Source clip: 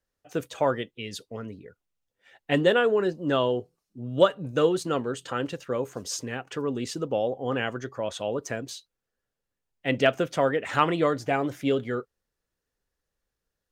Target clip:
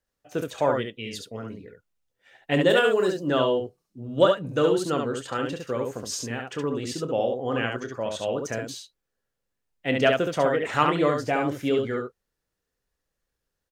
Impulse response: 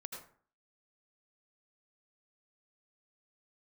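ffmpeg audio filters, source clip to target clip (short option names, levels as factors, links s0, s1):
-filter_complex "[0:a]asplit=3[s0][s1][s2];[s0]afade=t=out:st=2.69:d=0.02[s3];[s1]bass=f=250:g=-3,treble=f=4000:g=14,afade=t=in:st=2.69:d=0.02,afade=t=out:st=3.2:d=0.02[s4];[s2]afade=t=in:st=3.2:d=0.02[s5];[s3][s4][s5]amix=inputs=3:normalize=0,aecho=1:1:27|69:0.251|0.631"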